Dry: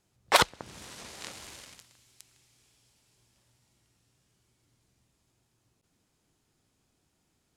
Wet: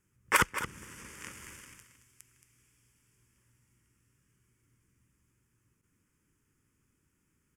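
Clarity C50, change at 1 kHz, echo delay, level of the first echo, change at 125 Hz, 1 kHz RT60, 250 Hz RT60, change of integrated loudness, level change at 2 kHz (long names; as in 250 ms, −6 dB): no reverb audible, −4.0 dB, 223 ms, −11.0 dB, +1.0 dB, no reverb audible, no reverb audible, −4.0 dB, +0.5 dB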